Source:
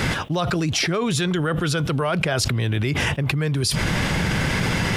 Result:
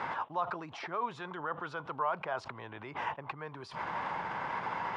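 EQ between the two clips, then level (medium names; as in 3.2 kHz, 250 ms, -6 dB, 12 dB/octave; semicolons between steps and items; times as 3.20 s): band-pass filter 960 Hz, Q 4.1; distance through air 71 m; 0.0 dB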